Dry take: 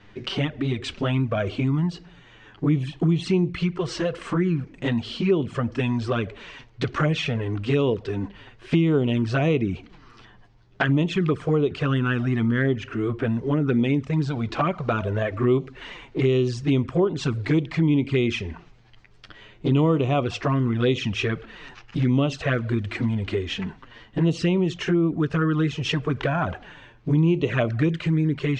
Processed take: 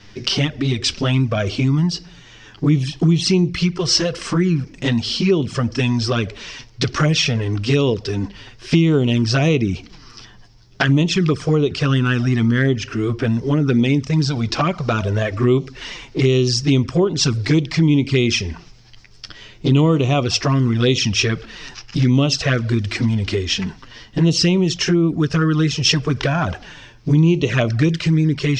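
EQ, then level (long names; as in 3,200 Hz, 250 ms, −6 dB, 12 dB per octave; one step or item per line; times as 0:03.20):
low-shelf EQ 290 Hz +6 dB
high-shelf EQ 2,900 Hz +11.5 dB
parametric band 5,300 Hz +13.5 dB 0.45 octaves
+1.5 dB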